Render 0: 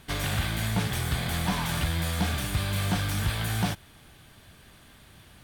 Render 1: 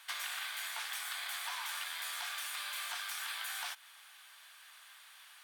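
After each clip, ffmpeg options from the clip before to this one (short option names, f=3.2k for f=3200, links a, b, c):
-af "highpass=f=990:w=0.5412,highpass=f=990:w=1.3066,acompressor=threshold=-38dB:ratio=4"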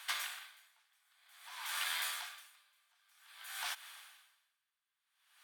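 -af "aeval=exprs='val(0)*pow(10,-39*(0.5-0.5*cos(2*PI*0.52*n/s))/20)':c=same,volume=4.5dB"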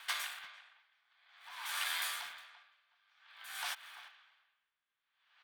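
-filter_complex "[0:a]acrossover=split=590|2500|4200[a][b][c][d];[d]aeval=exprs='sgn(val(0))*max(abs(val(0))-0.00112,0)':c=same[e];[a][b][c][e]amix=inputs=4:normalize=0,asplit=2[f][g];[g]adelay=340,highpass=300,lowpass=3.4k,asoftclip=type=hard:threshold=-32.5dB,volume=-15dB[h];[f][h]amix=inputs=2:normalize=0,volume=1dB"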